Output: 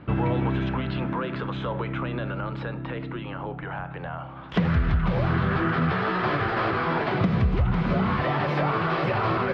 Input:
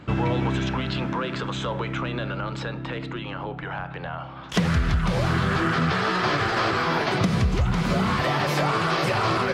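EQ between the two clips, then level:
high-frequency loss of the air 350 metres
0.0 dB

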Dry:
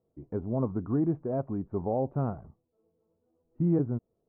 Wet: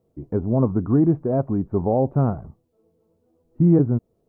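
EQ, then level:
low-shelf EQ 370 Hz +3.5 dB
+7.5 dB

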